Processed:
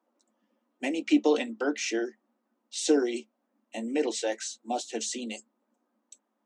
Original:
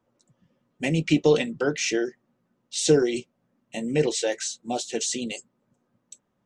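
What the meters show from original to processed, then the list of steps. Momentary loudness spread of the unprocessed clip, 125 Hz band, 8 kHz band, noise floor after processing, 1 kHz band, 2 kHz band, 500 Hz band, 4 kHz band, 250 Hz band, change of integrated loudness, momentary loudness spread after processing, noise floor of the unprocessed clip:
13 LU, below −25 dB, −6.0 dB, −79 dBFS, −0.5 dB, −4.5 dB, −5.5 dB, −5.5 dB, −2.0 dB, −4.5 dB, 13 LU, −74 dBFS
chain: Chebyshev high-pass with heavy ripple 210 Hz, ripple 6 dB

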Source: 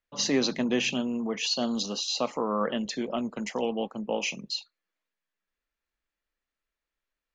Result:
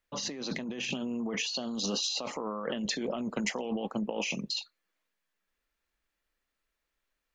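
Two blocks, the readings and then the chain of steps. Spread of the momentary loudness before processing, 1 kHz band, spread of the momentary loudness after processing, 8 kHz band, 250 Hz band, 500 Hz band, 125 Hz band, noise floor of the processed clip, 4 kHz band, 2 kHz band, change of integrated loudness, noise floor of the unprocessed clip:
7 LU, −6.0 dB, 5 LU, −2.5 dB, −4.5 dB, −6.0 dB, −1.5 dB, −84 dBFS, −3.5 dB, −2.5 dB, −4.0 dB, below −85 dBFS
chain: compressor whose output falls as the input rises −34 dBFS, ratio −1

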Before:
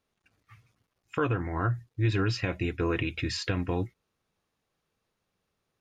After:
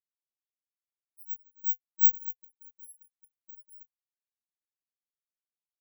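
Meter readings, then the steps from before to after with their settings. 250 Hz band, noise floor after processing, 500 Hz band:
below −40 dB, below −85 dBFS, below −40 dB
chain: samples in bit-reversed order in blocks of 256 samples
first difference
every bin expanded away from the loudest bin 4 to 1

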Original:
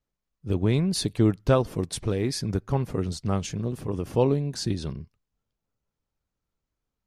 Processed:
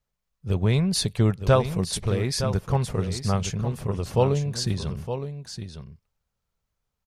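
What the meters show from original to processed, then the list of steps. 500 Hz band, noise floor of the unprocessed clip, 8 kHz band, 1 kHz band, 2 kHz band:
+1.0 dB, below −85 dBFS, +4.0 dB, +3.5 dB, +4.0 dB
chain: parametric band 300 Hz −12.5 dB 0.59 octaves
on a send: single-tap delay 914 ms −9.5 dB
on the sum: level +3.5 dB

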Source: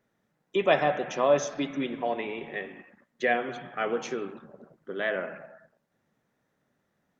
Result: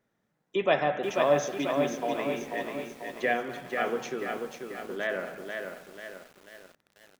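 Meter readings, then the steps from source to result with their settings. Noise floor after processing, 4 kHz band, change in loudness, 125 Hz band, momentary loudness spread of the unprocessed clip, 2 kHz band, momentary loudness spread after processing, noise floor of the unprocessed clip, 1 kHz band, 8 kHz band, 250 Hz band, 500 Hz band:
−77 dBFS, 0.0 dB, −1.5 dB, +0.5 dB, 16 LU, −0.5 dB, 14 LU, −77 dBFS, −0.5 dB, can't be measured, 0.0 dB, −0.5 dB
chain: feedback echo at a low word length 489 ms, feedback 55%, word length 8 bits, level −4.5 dB
level −2 dB

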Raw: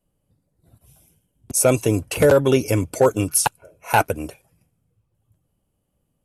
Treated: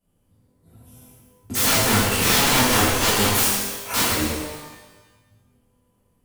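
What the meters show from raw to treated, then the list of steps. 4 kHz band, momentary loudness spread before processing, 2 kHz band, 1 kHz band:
+12.5 dB, 8 LU, +5.0 dB, +0.5 dB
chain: wrap-around overflow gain 17.5 dB
reverb with rising layers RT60 1.1 s, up +12 semitones, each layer −8 dB, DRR −9.5 dB
level −4.5 dB

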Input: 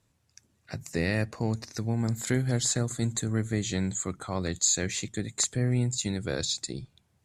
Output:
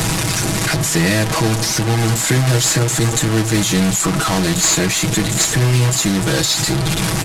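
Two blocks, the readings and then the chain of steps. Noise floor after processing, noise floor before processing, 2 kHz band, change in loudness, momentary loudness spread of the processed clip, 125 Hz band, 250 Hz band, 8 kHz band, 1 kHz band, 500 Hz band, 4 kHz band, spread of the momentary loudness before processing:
−19 dBFS, −71 dBFS, +17.0 dB, +13.5 dB, 3 LU, +13.5 dB, +13.0 dB, +13.5 dB, +20.0 dB, +13.0 dB, +16.5 dB, 7 LU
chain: linear delta modulator 64 kbit/s, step −26 dBFS
notch filter 500 Hz, Q 14
comb filter 6.2 ms, depth 69%
in parallel at −7 dB: gain into a clipping stage and back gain 23 dB
on the sum: multiband upward and downward compressor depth 40%
level +8.5 dB

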